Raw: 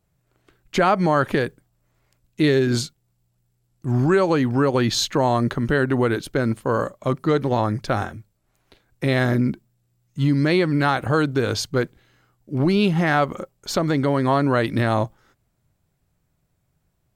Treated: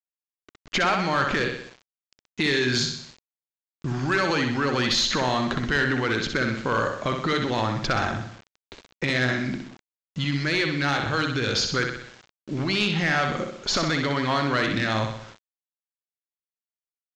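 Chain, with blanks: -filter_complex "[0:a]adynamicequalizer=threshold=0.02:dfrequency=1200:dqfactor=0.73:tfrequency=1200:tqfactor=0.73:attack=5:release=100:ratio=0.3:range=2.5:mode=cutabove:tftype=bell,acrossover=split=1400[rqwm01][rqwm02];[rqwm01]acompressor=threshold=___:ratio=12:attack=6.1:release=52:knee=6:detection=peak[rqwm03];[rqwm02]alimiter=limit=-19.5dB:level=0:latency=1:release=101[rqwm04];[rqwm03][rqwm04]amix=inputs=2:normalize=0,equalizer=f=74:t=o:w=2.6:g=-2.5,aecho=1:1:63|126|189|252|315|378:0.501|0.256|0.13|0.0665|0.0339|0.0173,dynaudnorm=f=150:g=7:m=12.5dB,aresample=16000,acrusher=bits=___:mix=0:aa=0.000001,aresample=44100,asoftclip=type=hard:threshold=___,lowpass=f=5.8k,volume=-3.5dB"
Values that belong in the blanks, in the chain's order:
-33dB, 6, -12.5dB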